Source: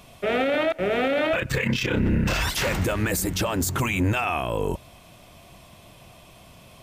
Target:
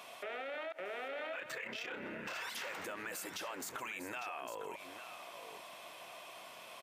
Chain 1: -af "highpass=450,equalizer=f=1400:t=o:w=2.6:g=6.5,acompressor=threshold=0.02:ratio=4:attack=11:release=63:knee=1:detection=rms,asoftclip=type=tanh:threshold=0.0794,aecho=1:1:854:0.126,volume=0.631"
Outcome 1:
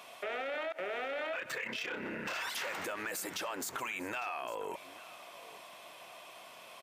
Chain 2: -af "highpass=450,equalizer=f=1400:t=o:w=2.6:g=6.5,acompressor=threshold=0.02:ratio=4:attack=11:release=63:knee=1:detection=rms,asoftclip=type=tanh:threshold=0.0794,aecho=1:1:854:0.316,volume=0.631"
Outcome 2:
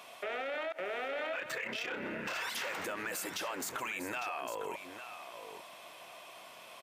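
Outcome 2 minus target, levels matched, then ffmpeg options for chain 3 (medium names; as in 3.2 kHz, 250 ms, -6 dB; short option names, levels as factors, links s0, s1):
compression: peak gain reduction -5.5 dB
-af "highpass=450,equalizer=f=1400:t=o:w=2.6:g=6.5,acompressor=threshold=0.00891:ratio=4:attack=11:release=63:knee=1:detection=rms,asoftclip=type=tanh:threshold=0.0794,aecho=1:1:854:0.316,volume=0.631"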